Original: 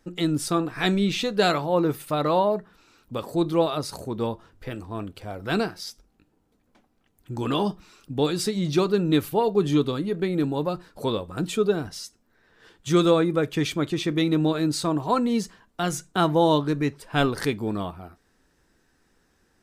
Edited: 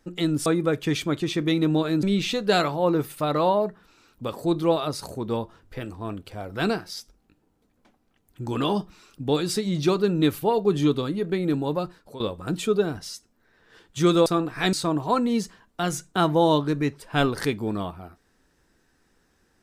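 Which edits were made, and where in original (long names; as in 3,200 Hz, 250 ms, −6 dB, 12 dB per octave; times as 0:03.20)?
0:00.46–0:00.93: swap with 0:13.16–0:14.73
0:10.74–0:11.10: fade out, to −17 dB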